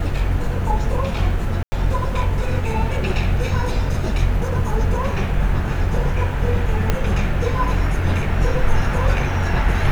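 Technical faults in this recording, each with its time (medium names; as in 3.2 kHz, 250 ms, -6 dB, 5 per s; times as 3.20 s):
1.63–1.72 s: dropout 90 ms
6.90 s: pop -4 dBFS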